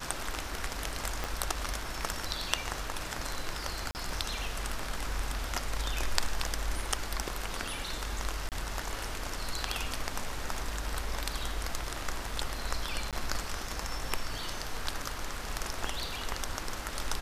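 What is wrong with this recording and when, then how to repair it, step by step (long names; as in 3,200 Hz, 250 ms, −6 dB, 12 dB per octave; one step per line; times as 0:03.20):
0:01.24: click −17 dBFS
0:03.91–0:03.95: drop-out 39 ms
0:08.49–0:08.52: drop-out 28 ms
0:13.11–0:13.13: drop-out 17 ms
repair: click removal
repair the gap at 0:03.91, 39 ms
repair the gap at 0:08.49, 28 ms
repair the gap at 0:13.11, 17 ms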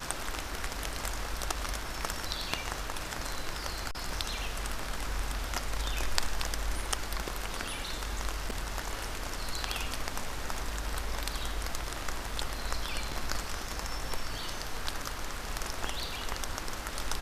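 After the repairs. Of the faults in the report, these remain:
0:01.24: click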